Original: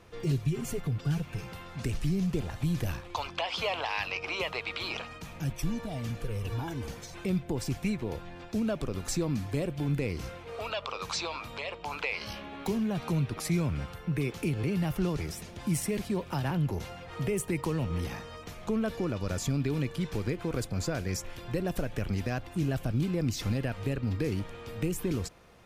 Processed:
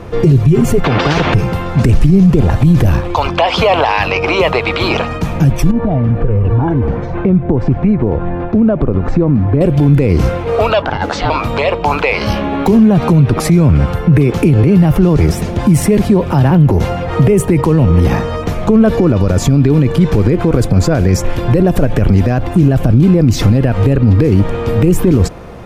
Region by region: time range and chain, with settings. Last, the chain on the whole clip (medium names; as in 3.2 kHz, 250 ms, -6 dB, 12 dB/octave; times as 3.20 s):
0.84–1.34 s: high-pass 60 Hz + distance through air 200 m + spectrum-flattening compressor 4:1
5.71–9.61 s: low-pass 1.7 kHz + compression 2.5:1, threshold -38 dBFS
10.82–11.30 s: low-pass 3.1 kHz 6 dB/octave + ring modulator 380 Hz
whole clip: tilt shelf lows +7 dB, about 1.5 kHz; loudness maximiser +22 dB; trim -1 dB